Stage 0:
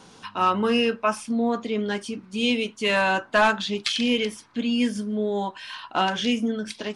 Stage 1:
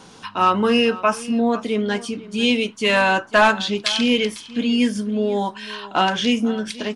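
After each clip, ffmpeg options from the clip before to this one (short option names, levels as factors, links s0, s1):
-af "aecho=1:1:498:0.119,volume=1.68"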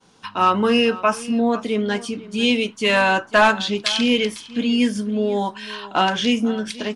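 -af "agate=range=0.0224:threshold=0.0141:ratio=3:detection=peak"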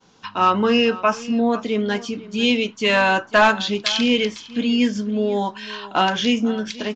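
-af "aresample=16000,aresample=44100"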